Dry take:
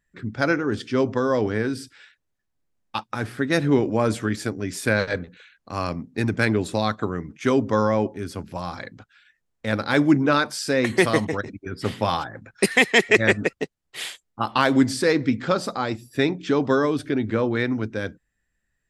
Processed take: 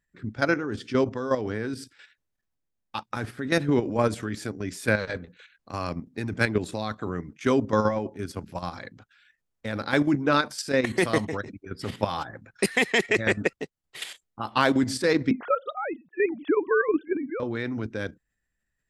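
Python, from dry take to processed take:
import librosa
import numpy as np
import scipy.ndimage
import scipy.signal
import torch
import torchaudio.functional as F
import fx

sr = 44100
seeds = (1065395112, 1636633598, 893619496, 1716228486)

y = fx.sine_speech(x, sr, at=(15.31, 17.4))
y = fx.level_steps(y, sr, step_db=10)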